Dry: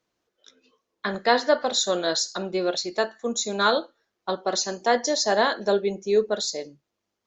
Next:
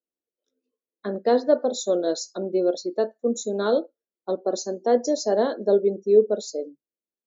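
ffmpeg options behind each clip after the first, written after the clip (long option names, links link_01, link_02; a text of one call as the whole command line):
ffmpeg -i in.wav -af "afftdn=noise_reduction=20:noise_floor=-34,equalizer=frequency=125:width_type=o:width=1:gain=-10,equalizer=frequency=250:width_type=o:width=1:gain=9,equalizer=frequency=500:width_type=o:width=1:gain=8,equalizer=frequency=1000:width_type=o:width=1:gain=-7,equalizer=frequency=2000:width_type=o:width=1:gain=-10,equalizer=frequency=4000:width_type=o:width=1:gain=-6,volume=-3dB" out.wav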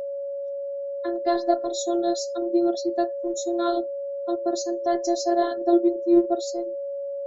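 ffmpeg -i in.wav -af "afftfilt=real='hypot(re,im)*cos(PI*b)':imag='0':win_size=512:overlap=0.75,aeval=exprs='val(0)+0.0282*sin(2*PI*560*n/s)':channel_layout=same,volume=3dB" out.wav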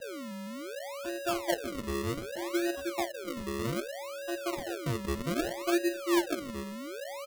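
ffmpeg -i in.wav -filter_complex "[0:a]acrossover=split=180[link_01][link_02];[link_01]aecho=1:1:542:0.398[link_03];[link_02]acrusher=samples=39:mix=1:aa=0.000001:lfo=1:lforange=39:lforate=0.64[link_04];[link_03][link_04]amix=inputs=2:normalize=0,volume=-9dB" out.wav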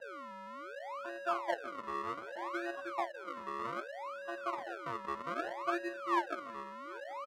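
ffmpeg -i in.wav -af "bandpass=frequency=1100:width_type=q:width=2.4:csg=0,aecho=1:1:783:0.0794,volume=5dB" out.wav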